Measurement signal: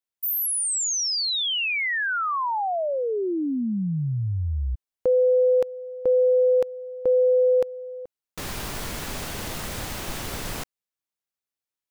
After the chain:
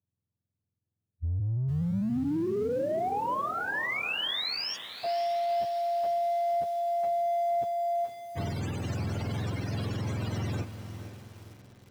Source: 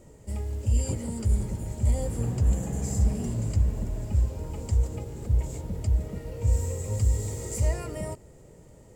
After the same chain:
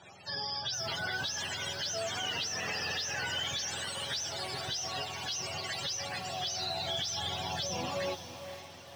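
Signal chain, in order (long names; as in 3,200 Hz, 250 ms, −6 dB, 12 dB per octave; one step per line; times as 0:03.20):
frequency axis turned over on the octave scale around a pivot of 590 Hz
dynamic equaliser 1,400 Hz, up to −7 dB, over −36 dBFS, Q 0.73
in parallel at −4 dB: soft clipping −30 dBFS
on the sum: brickwall limiter −26 dBFS
low-pass filter 5,400 Hz 12 dB per octave
on a send: feedback delay with all-pass diffusion 544 ms, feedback 46%, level −13 dB
on the sum: feedback echo at a low word length 457 ms, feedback 55%, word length 7 bits, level −15 dB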